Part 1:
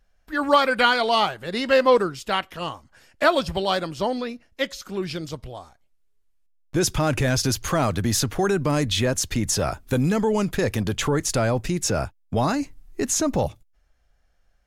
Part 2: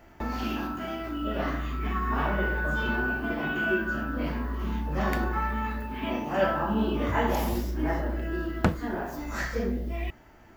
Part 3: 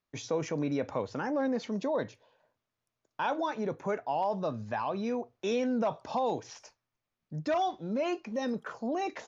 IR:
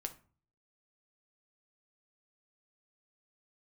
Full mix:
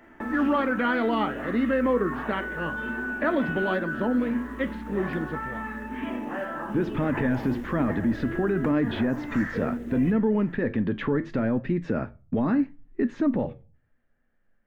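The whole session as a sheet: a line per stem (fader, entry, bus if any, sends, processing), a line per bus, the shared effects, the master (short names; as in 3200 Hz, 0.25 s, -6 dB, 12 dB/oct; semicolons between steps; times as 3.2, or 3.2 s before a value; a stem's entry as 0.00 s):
-3.5 dB, 0.00 s, bus A, send -13 dB, LPF 2900 Hz 12 dB/oct; low shelf 470 Hz +11 dB; flange 0.77 Hz, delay 7.8 ms, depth 4.3 ms, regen -77%
-1.5 dB, 0.00 s, bus A, send -3.5 dB, modulation noise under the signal 19 dB; compressor, threshold -31 dBFS, peak gain reduction 13 dB
off
bus A: 0.0 dB, speaker cabinet 170–4400 Hz, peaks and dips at 240 Hz +9 dB, 720 Hz -8 dB, 1800 Hz +9 dB; limiter -17 dBFS, peak gain reduction 8.5 dB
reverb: on, RT60 0.40 s, pre-delay 5 ms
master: high shelf 5400 Hz -7 dB; wow and flutter 16 cents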